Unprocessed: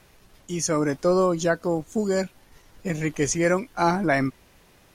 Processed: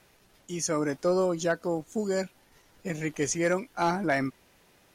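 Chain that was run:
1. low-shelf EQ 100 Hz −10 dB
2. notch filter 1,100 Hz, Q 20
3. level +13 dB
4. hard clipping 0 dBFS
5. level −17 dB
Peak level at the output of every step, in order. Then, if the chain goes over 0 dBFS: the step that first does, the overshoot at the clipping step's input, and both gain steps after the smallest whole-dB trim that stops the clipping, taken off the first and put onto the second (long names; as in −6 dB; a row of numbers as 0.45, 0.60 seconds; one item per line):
−8.5, −8.5, +4.5, 0.0, −17.0 dBFS
step 3, 4.5 dB
step 3 +8 dB, step 5 −12 dB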